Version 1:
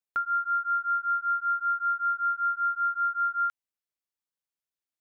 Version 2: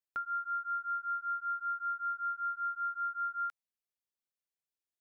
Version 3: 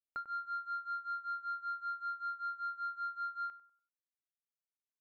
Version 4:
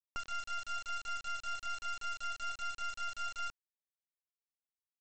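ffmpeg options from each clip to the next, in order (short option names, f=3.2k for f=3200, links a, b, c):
-af "equalizer=f=1.3k:w=1.5:g=-3.5,volume=-5dB"
-filter_complex "[0:a]aeval=exprs='sgn(val(0))*max(abs(val(0))-0.00133,0)':c=same,adynamicsmooth=sensitivity=1.5:basefreq=1.1k,asplit=2[a][b];[b]adelay=97,lowpass=f=1.2k:p=1,volume=-12dB,asplit=2[c][d];[d]adelay=97,lowpass=f=1.2k:p=1,volume=0.43,asplit=2[e][f];[f]adelay=97,lowpass=f=1.2k:p=1,volume=0.43,asplit=2[g][h];[h]adelay=97,lowpass=f=1.2k:p=1,volume=0.43[i];[a][c][e][g][i]amix=inputs=5:normalize=0"
-af "lowpass=f=1.8k:w=0.5412,lowpass=f=1.8k:w=1.3066,aresample=16000,acrusher=bits=5:dc=4:mix=0:aa=0.000001,aresample=44100,volume=4.5dB"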